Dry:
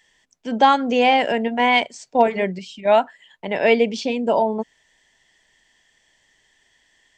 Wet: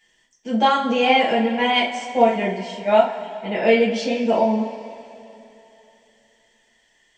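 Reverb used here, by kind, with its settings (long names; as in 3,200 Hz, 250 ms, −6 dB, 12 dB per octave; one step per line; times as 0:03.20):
coupled-rooms reverb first 0.31 s, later 3.1 s, from −18 dB, DRR −6 dB
level −7 dB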